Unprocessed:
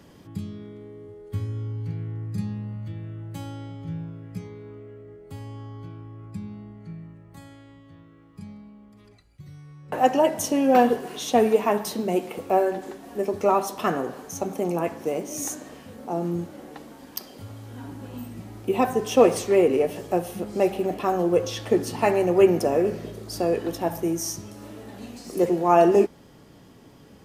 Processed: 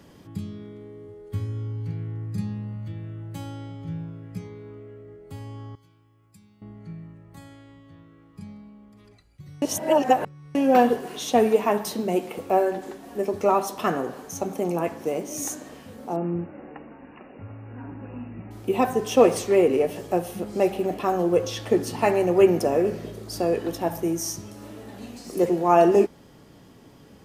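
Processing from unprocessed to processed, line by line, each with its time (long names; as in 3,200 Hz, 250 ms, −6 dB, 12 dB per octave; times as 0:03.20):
0:05.75–0:06.62: first-order pre-emphasis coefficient 0.9
0:09.62–0:10.55: reverse
0:16.16–0:18.51: linear-phase brick-wall low-pass 2,900 Hz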